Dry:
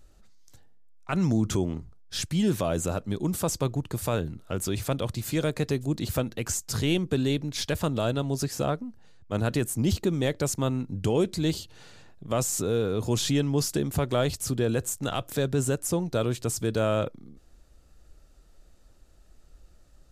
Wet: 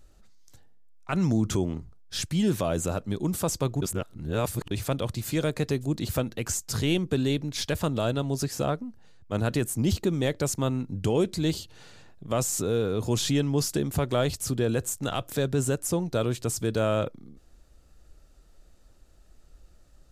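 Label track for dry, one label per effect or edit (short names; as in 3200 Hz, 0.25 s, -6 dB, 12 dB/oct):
3.820000	4.710000	reverse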